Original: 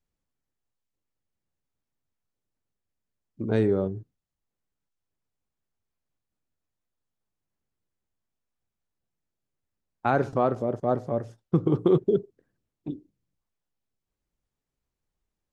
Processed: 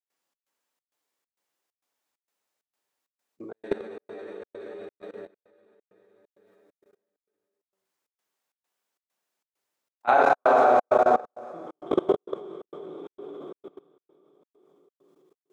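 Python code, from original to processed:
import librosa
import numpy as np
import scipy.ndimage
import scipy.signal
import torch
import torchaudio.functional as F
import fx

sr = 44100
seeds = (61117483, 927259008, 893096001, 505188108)

y = scipy.signal.sosfilt(scipy.signal.butter(2, 530.0, 'highpass', fs=sr, output='sos'), x)
y = fx.rev_plate(y, sr, seeds[0], rt60_s=4.5, hf_ratio=0.95, predelay_ms=0, drr_db=-7.0)
y = fx.step_gate(y, sr, bpm=132, pattern='xxx.xxx.', floor_db=-60.0, edge_ms=4.5)
y = fx.dynamic_eq(y, sr, hz=710.0, q=6.4, threshold_db=-35.0, ratio=4.0, max_db=4)
y = fx.level_steps(y, sr, step_db=22)
y = y * 10.0 ** (4.5 / 20.0)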